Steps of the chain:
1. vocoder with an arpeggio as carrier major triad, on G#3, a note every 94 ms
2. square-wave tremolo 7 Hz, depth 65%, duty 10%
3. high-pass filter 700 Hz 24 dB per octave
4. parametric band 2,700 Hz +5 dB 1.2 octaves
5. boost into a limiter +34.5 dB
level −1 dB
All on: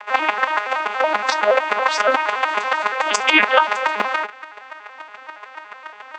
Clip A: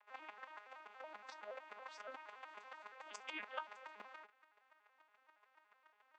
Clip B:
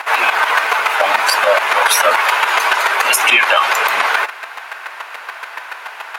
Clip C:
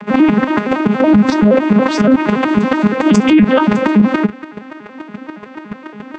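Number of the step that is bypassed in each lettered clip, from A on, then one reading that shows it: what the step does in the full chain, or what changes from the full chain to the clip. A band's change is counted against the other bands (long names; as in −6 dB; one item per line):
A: 5, change in crest factor +7.0 dB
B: 1, 250 Hz band −13.5 dB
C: 3, 250 Hz band +27.0 dB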